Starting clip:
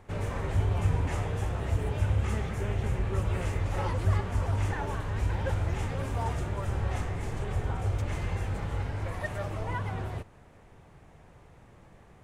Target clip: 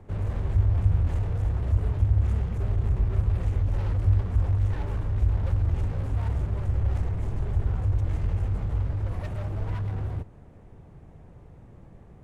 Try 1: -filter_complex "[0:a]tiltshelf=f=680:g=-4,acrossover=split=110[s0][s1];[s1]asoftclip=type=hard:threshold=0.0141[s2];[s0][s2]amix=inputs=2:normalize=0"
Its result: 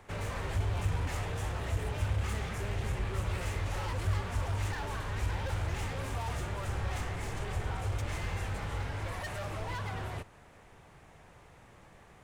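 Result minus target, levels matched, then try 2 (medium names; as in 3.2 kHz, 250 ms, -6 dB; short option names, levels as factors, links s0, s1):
500 Hz band +8.0 dB
-filter_complex "[0:a]tiltshelf=f=680:g=7.5,acrossover=split=110[s0][s1];[s1]asoftclip=type=hard:threshold=0.0141[s2];[s0][s2]amix=inputs=2:normalize=0"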